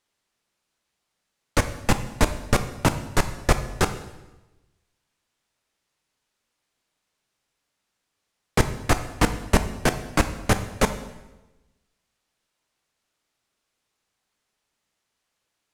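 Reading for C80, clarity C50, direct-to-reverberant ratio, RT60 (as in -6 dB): 13.5 dB, 11.5 dB, 9.0 dB, 1.1 s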